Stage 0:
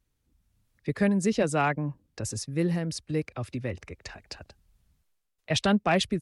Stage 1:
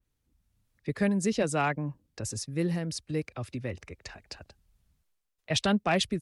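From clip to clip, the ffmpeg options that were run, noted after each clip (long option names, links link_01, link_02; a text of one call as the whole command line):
ffmpeg -i in.wav -af "adynamicequalizer=threshold=0.01:dfrequency=2700:dqfactor=0.7:tfrequency=2700:tqfactor=0.7:attack=5:release=100:ratio=0.375:range=1.5:mode=boostabove:tftype=highshelf,volume=-2.5dB" out.wav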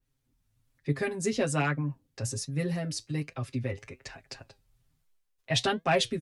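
ffmpeg -i in.wav -af "aecho=1:1:7.5:0.91,flanger=delay=5.9:depth=4.3:regen=73:speed=1.2:shape=triangular,volume=2.5dB" out.wav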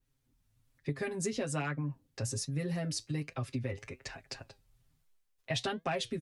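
ffmpeg -i in.wav -af "acompressor=threshold=-31dB:ratio=6" out.wav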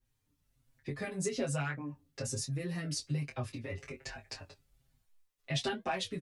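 ffmpeg -i in.wav -filter_complex "[0:a]asplit=2[link_01][link_02];[link_02]adelay=21,volume=-6.5dB[link_03];[link_01][link_03]amix=inputs=2:normalize=0,asplit=2[link_04][link_05];[link_05]adelay=5.8,afreqshift=-1.2[link_06];[link_04][link_06]amix=inputs=2:normalize=1,volume=2dB" out.wav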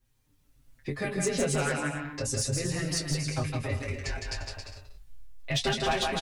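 ffmpeg -i in.wav -af "aecho=1:1:160|272|350.4|405.3|443.7:0.631|0.398|0.251|0.158|0.1,asoftclip=type=hard:threshold=-26.5dB,asubboost=boost=8.5:cutoff=57,volume=6.5dB" out.wav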